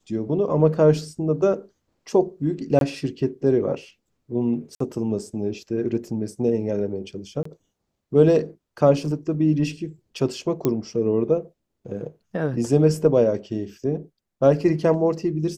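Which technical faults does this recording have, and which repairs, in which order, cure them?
2.79–2.81 s: dropout 22 ms
4.75–4.80 s: dropout 54 ms
7.43–7.45 s: dropout 24 ms
10.65 s: pop -9 dBFS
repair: de-click; interpolate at 2.79 s, 22 ms; interpolate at 4.75 s, 54 ms; interpolate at 7.43 s, 24 ms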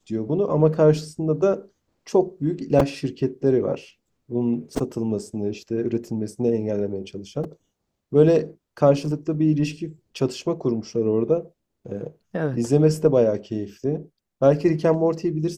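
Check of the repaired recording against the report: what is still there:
nothing left

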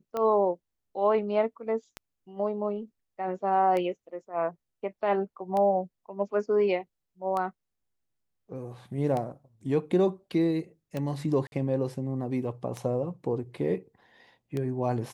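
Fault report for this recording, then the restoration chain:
tick 33 1/3 rpm -19 dBFS
11.47–11.52 s: dropout 51 ms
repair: de-click; interpolate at 11.47 s, 51 ms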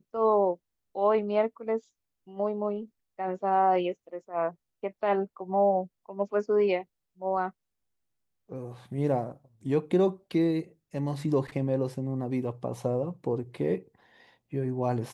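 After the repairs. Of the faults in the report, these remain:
nothing left

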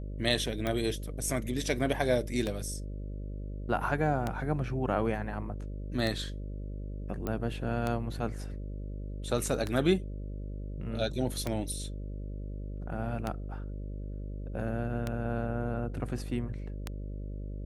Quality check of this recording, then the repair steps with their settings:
buzz 50 Hz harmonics 12 -38 dBFS
tick 33 1/3 rpm -17 dBFS
7.27 s: pop -20 dBFS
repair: de-click; de-hum 50 Hz, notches 12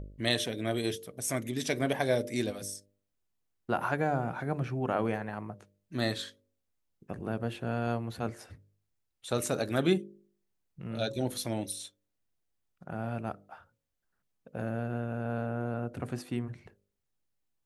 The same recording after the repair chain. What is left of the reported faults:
nothing left

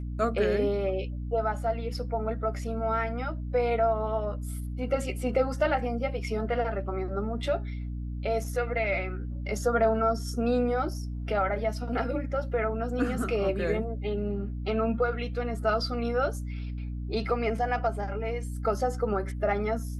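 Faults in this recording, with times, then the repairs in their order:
hum 60 Hz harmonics 5 -34 dBFS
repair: de-hum 60 Hz, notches 5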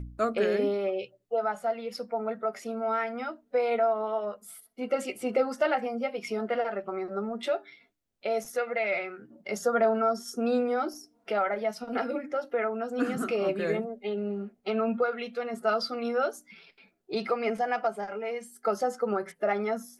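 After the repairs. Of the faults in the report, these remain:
nothing left

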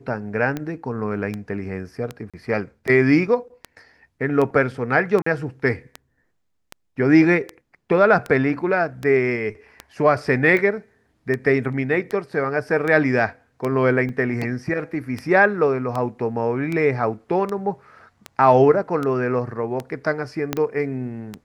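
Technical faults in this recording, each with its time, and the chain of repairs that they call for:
tick 78 rpm -14 dBFS
2.30–2.34 s: dropout 36 ms
5.22–5.26 s: dropout 44 ms
14.09 s: dropout 3.2 ms
20.53 s: pop -7 dBFS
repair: de-click; interpolate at 2.30 s, 36 ms; interpolate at 5.22 s, 44 ms; interpolate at 14.09 s, 3.2 ms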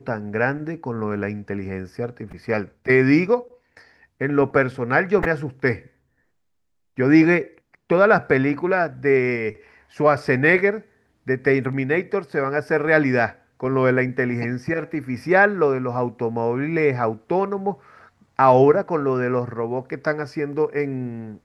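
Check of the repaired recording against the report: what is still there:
20.53 s: pop

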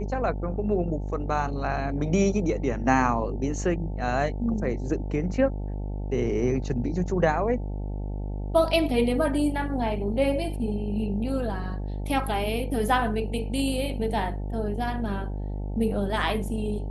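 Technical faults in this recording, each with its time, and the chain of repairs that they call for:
buzz 50 Hz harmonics 18 -31 dBFS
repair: de-hum 50 Hz, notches 18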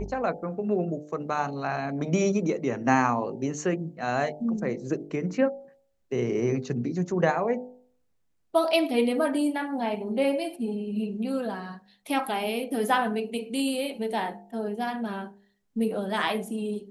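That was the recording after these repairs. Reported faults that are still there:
nothing left

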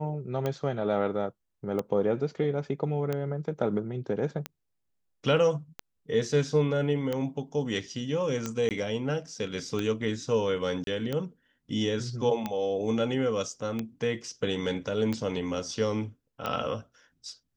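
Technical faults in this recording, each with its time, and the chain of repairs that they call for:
tick 45 rpm -17 dBFS
8.69–8.71 s: dropout 18 ms
10.84–10.87 s: dropout 32 ms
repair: de-click; interpolate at 8.69 s, 18 ms; interpolate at 10.84 s, 32 ms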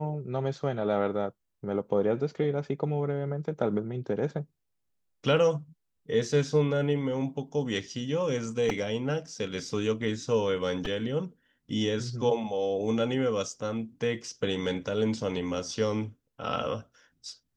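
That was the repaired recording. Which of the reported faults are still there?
nothing left

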